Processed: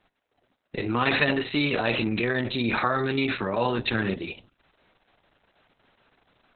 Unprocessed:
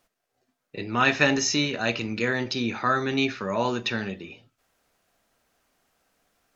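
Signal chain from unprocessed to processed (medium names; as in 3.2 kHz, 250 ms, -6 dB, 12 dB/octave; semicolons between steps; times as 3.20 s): in parallel at -2.5 dB: compressor with a negative ratio -32 dBFS, ratio -1; on the sum: Opus 6 kbps 48 kHz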